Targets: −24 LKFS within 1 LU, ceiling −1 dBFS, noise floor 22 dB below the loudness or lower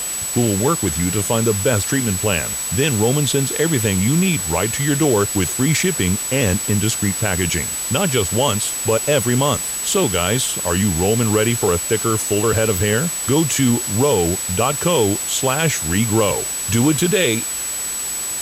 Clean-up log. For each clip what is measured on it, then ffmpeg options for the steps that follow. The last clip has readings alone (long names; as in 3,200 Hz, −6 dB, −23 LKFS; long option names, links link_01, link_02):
interfering tone 7,900 Hz; level of the tone −23 dBFS; background noise floor −25 dBFS; target noise floor −40 dBFS; integrated loudness −17.5 LKFS; sample peak −3.0 dBFS; target loudness −24.0 LKFS
→ -af "bandreject=frequency=7900:width=30"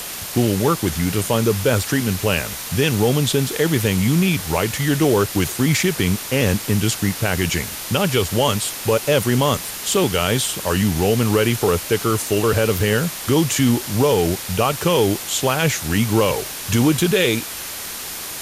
interfering tone none found; background noise floor −30 dBFS; target noise floor −41 dBFS
→ -af "afftdn=noise_reduction=11:noise_floor=-30"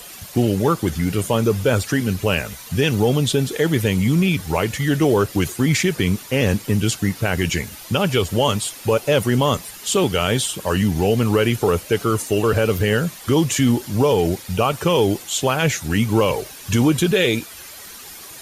background noise floor −38 dBFS; target noise floor −42 dBFS
→ -af "afftdn=noise_reduction=6:noise_floor=-38"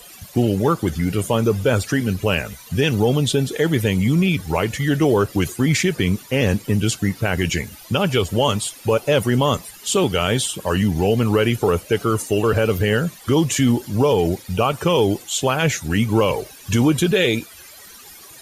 background noise floor −42 dBFS; integrated loudness −19.5 LKFS; sample peak −5.0 dBFS; target loudness −24.0 LKFS
→ -af "volume=-4.5dB"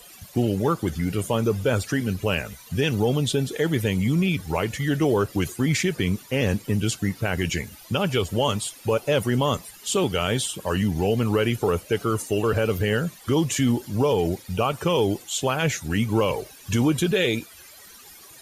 integrated loudness −24.0 LKFS; sample peak −9.5 dBFS; background noise floor −47 dBFS